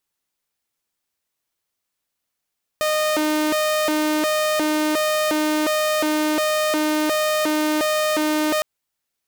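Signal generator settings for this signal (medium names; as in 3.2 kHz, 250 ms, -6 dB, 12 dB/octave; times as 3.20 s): siren hi-lo 306–615 Hz 1.4 per s saw -15.5 dBFS 5.81 s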